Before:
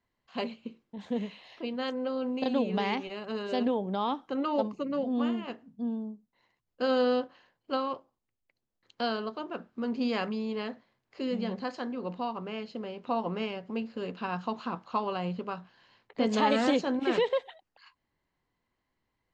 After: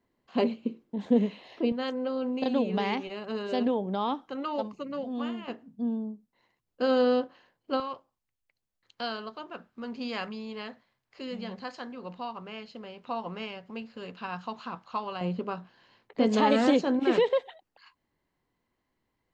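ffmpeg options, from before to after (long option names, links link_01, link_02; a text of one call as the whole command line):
ffmpeg -i in.wav -af "asetnsamples=nb_out_samples=441:pad=0,asendcmd='1.72 equalizer g 1.5;4.29 equalizer g -5;5.48 equalizer g 3;7.8 equalizer g -7;15.21 equalizer g 4',equalizer=frequency=320:width_type=o:width=2.2:gain=11" out.wav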